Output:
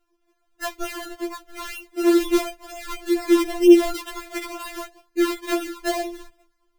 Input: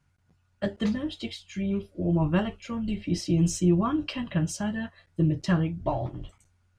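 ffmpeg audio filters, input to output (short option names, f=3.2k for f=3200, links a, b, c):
-af "acrusher=samples=27:mix=1:aa=0.000001:lfo=1:lforange=27:lforate=2.1,afftfilt=real='re*4*eq(mod(b,16),0)':imag='im*4*eq(mod(b,16),0)':win_size=2048:overlap=0.75,volume=6.5dB"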